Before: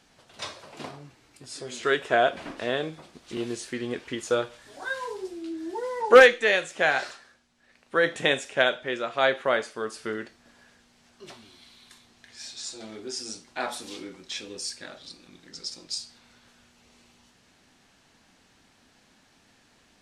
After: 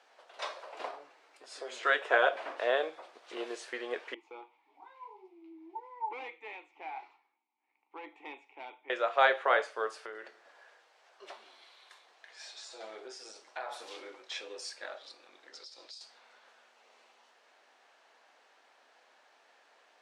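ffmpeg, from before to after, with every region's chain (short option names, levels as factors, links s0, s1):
-filter_complex "[0:a]asettb=1/sr,asplit=3[s0][s1][s2];[s0]atrim=end=4.144[s3];[s1]atrim=start=4.14:end=8.9,asetpts=PTS-STARTPTS,afade=t=in:d=0.004:c=qsin,afade=t=out:st=4.756:d=0.004:c=qsin,volume=8.91,asoftclip=hard,volume=0.112,asplit=3[s4][s5][s6];[s4]bandpass=f=300:t=q:w=8,volume=1[s7];[s5]bandpass=f=870:t=q:w=8,volume=0.501[s8];[s6]bandpass=f=2240:t=q:w=8,volume=0.355[s9];[s7][s8][s9]amix=inputs=3:normalize=0[s10];[s2]atrim=start=8.896[s11];[s3][s10]acrossfade=d=0.004:c1=hsin:c2=qsin[s12];[s12][s11]acrossfade=d=0.004:c1=qsin:c2=hsin,asettb=1/sr,asplit=3[s13][s14][s15];[s13]atrim=end=9.974[s16];[s14]atrim=start=9.97:end=14.25,asetpts=PTS-STARTPTS,afade=t=in:d=0.004:c=qsin,afade=t=out:st=4.276:d=0.004:c=qsin,bandreject=f=60:t=h:w=6,bandreject=f=120:t=h:w=6,bandreject=f=180:t=h:w=6,bandreject=f=240:t=h:w=6,bandreject=f=300:t=h:w=6,bandreject=f=360:t=h:w=6,bandreject=f=420:t=h:w=6,acompressor=threshold=0.0178:ratio=10:attack=3.2:release=140:knee=1:detection=peak,aecho=1:1:177:0.112,atrim=end_sample=188748[s17];[s15]atrim=start=14.246[s18];[s16][s17]acrossfade=d=0.004:c1=hsin:c2=qsin[s19];[s19][s18]acrossfade=d=0.004:c1=qsin:c2=hsin,asettb=1/sr,asplit=3[s20][s21][s22];[s20]atrim=end=15.574[s23];[s21]atrim=start=15.57:end=16.01,asetpts=PTS-STARTPTS,afade=t=in:d=0.004:c=qsin,afade=t=out:st=0.436:d=0.004:c=qsin,equalizer=f=4100:t=o:w=0.81:g=8,acompressor=threshold=0.00794:ratio=3:attack=3.2:release=140:knee=1:detection=peak[s24];[s22]atrim=start=16.006[s25];[s23][s24]acrossfade=d=0.004:c1=hsin:c2=qsin[s26];[s26][s25]acrossfade=d=0.004:c1=qsin:c2=hsin,lowpass=f=1300:p=1,afftfilt=real='re*lt(hypot(re,im),0.562)':imag='im*lt(hypot(re,im),0.562)':win_size=1024:overlap=0.75,highpass=f=510:w=0.5412,highpass=f=510:w=1.3066,volume=1.5"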